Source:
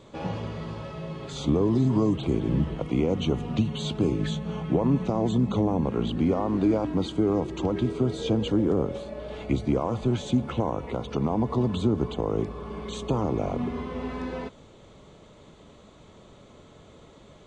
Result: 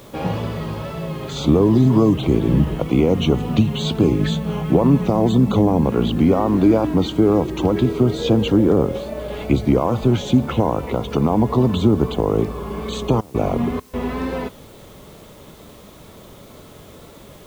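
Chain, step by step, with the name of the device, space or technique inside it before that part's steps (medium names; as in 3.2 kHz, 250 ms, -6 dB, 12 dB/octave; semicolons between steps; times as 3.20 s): worn cassette (low-pass 7.1 kHz; wow and flutter; level dips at 13.21/13.80 s, 133 ms -25 dB; white noise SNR 34 dB); trim +8.5 dB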